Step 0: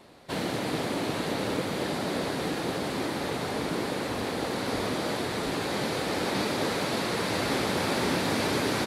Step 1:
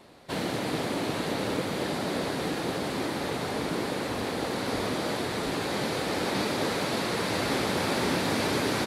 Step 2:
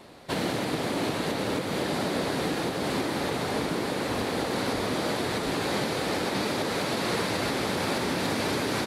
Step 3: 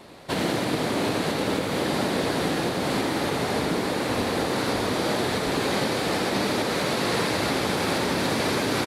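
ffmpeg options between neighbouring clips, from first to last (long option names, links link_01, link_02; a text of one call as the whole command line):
ffmpeg -i in.wav -af anull out.wav
ffmpeg -i in.wav -af "alimiter=limit=-22dB:level=0:latency=1:release=267,volume=4dB" out.wav
ffmpeg -i in.wav -af "aecho=1:1:83:0.473,volume=2.5dB" out.wav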